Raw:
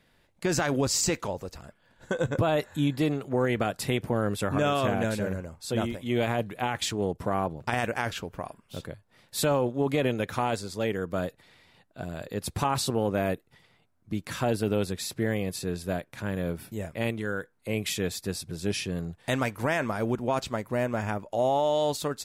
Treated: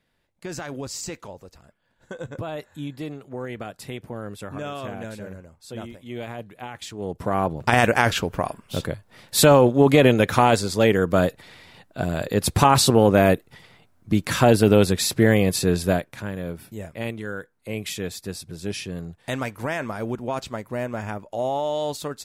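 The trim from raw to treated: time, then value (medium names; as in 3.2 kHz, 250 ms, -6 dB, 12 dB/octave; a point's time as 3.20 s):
6.91 s -7 dB
7.16 s +2 dB
7.80 s +11 dB
15.86 s +11 dB
16.33 s -0.5 dB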